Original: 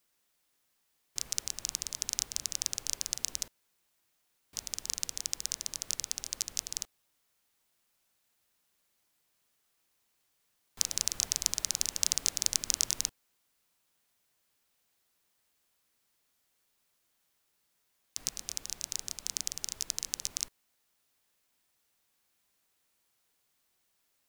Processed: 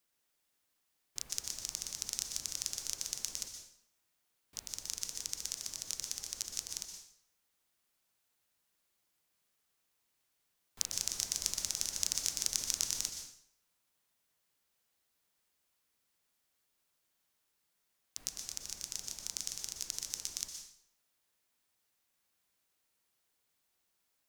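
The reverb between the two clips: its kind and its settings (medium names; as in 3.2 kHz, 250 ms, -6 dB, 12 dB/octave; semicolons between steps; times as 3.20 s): plate-style reverb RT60 0.63 s, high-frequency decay 0.9×, pre-delay 110 ms, DRR 5.5 dB; trim -5 dB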